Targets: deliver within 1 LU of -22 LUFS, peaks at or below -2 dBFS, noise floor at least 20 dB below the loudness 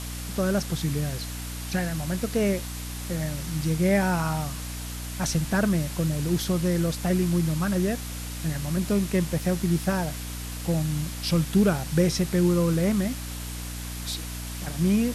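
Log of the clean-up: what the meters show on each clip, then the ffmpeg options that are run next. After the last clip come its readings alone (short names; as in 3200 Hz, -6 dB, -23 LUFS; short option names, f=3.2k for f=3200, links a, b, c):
hum 60 Hz; harmonics up to 300 Hz; hum level -33 dBFS; noise floor -35 dBFS; noise floor target -47 dBFS; loudness -26.5 LUFS; peak -9.5 dBFS; loudness target -22.0 LUFS
-> -af "bandreject=f=60:t=h:w=6,bandreject=f=120:t=h:w=6,bandreject=f=180:t=h:w=6,bandreject=f=240:t=h:w=6,bandreject=f=300:t=h:w=6"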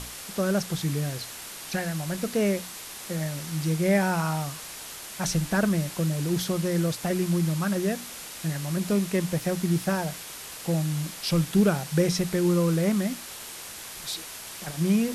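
hum none; noise floor -40 dBFS; noise floor target -48 dBFS
-> -af "afftdn=nr=8:nf=-40"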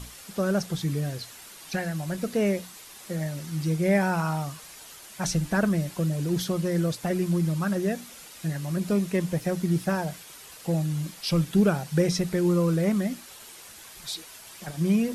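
noise floor -46 dBFS; noise floor target -47 dBFS
-> -af "afftdn=nr=6:nf=-46"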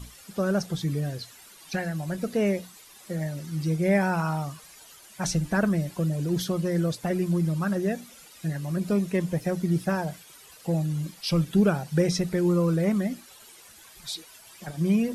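noise floor -51 dBFS; loudness -27.0 LUFS; peak -9.5 dBFS; loudness target -22.0 LUFS
-> -af "volume=5dB"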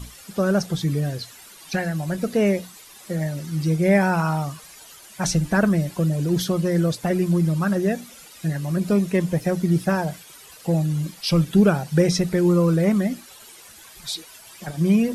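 loudness -22.0 LUFS; peak -4.5 dBFS; noise floor -46 dBFS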